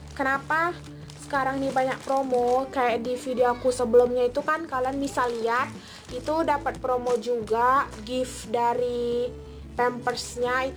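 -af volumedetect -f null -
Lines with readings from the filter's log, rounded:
mean_volume: -25.5 dB
max_volume: -8.8 dB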